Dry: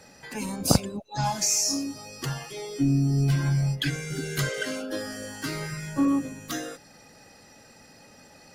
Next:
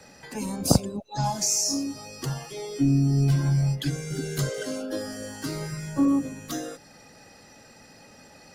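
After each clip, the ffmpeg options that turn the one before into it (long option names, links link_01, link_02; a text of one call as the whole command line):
ffmpeg -i in.wav -filter_complex "[0:a]highshelf=frequency=9500:gain=-3.5,acrossover=split=270|1100|4000[link_01][link_02][link_03][link_04];[link_03]acompressor=threshold=-49dB:ratio=6[link_05];[link_01][link_02][link_05][link_04]amix=inputs=4:normalize=0,volume=1.5dB" out.wav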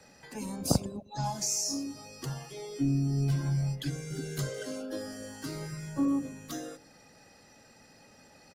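ffmpeg -i in.wav -filter_complex "[0:a]asplit=2[link_01][link_02];[link_02]adelay=103,lowpass=frequency=810:poles=1,volume=-19dB,asplit=2[link_03][link_04];[link_04]adelay=103,lowpass=frequency=810:poles=1,volume=0.41,asplit=2[link_05][link_06];[link_06]adelay=103,lowpass=frequency=810:poles=1,volume=0.41[link_07];[link_01][link_03][link_05][link_07]amix=inputs=4:normalize=0,volume=-6.5dB" out.wav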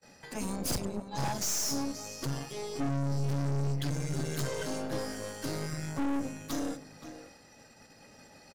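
ffmpeg -i in.wav -filter_complex "[0:a]asplit=2[link_01][link_02];[link_02]adelay=524.8,volume=-10dB,highshelf=frequency=4000:gain=-11.8[link_03];[link_01][link_03]amix=inputs=2:normalize=0,agate=range=-27dB:threshold=-57dB:ratio=16:detection=peak,aeval=exprs='(tanh(70.8*val(0)+0.8)-tanh(0.8))/70.8':channel_layout=same,volume=7.5dB" out.wav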